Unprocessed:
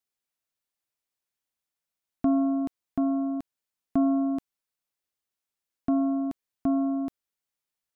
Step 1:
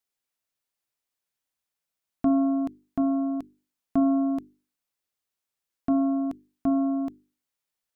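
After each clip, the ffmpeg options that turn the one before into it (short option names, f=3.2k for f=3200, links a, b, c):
-af "bandreject=f=50:t=h:w=6,bandreject=f=100:t=h:w=6,bandreject=f=150:t=h:w=6,bandreject=f=200:t=h:w=6,bandreject=f=250:t=h:w=6,bandreject=f=300:t=h:w=6,bandreject=f=350:t=h:w=6,bandreject=f=400:t=h:w=6,volume=1.5dB"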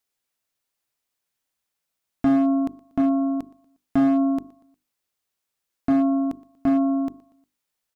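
-af "aecho=1:1:119|238|357:0.075|0.033|0.0145,volume=18.5dB,asoftclip=hard,volume=-18.5dB,volume=4.5dB"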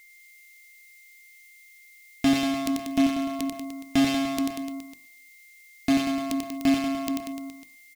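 -filter_complex "[0:a]asplit=2[a][b];[b]aecho=0:1:90|189|297.9|417.7|549.5:0.631|0.398|0.251|0.158|0.1[c];[a][c]amix=inputs=2:normalize=0,aexciter=amount=6.5:drive=8.2:freq=2.1k,aeval=exprs='val(0)+0.00355*sin(2*PI*2100*n/s)':c=same,volume=-2dB"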